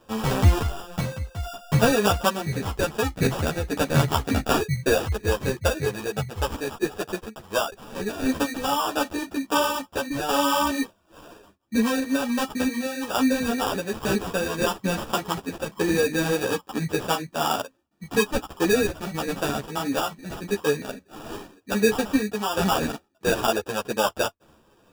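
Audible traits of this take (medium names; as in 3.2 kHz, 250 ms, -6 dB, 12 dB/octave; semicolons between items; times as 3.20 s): aliases and images of a low sample rate 2.1 kHz, jitter 0%; random-step tremolo; a shimmering, thickened sound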